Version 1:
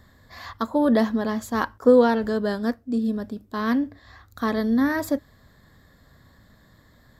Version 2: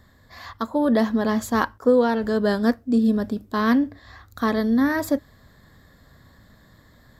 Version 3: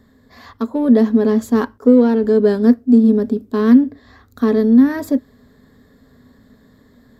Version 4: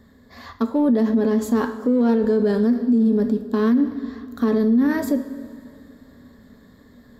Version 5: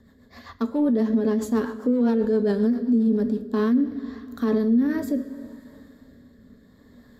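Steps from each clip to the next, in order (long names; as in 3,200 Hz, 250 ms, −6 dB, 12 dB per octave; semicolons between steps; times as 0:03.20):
speech leveller within 5 dB 0.5 s; level +2 dB
in parallel at −9.5 dB: gain into a clipping stage and back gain 23 dB; on the sum: hollow resonant body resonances 250/420 Hz, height 16 dB, ringing for 65 ms; level −5 dB
coupled-rooms reverb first 0.45 s, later 2.5 s, from −14 dB, DRR 7.5 dB; brickwall limiter −11.5 dBFS, peak gain reduction 11.5 dB
rotating-speaker cabinet horn 7.5 Hz, later 0.7 Hz, at 0:02.99; level −1.5 dB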